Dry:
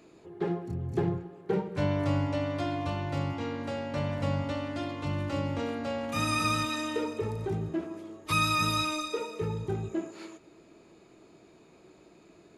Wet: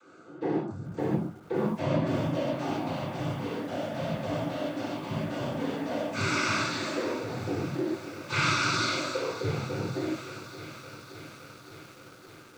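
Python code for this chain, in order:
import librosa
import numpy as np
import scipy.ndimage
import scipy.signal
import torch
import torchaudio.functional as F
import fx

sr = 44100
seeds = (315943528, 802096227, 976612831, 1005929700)

y = x + 10.0 ** (-57.0 / 20.0) * np.sin(2.0 * np.pi * 1300.0 * np.arange(len(x)) / sr)
y = fx.dereverb_blind(y, sr, rt60_s=0.72)
y = fx.noise_vocoder(y, sr, seeds[0], bands=16)
y = fx.rev_gated(y, sr, seeds[1], gate_ms=170, shape='flat', drr_db=-7.0)
y = fx.echo_crushed(y, sr, ms=567, feedback_pct=80, bits=7, wet_db=-14.0)
y = y * librosa.db_to_amplitude(-5.0)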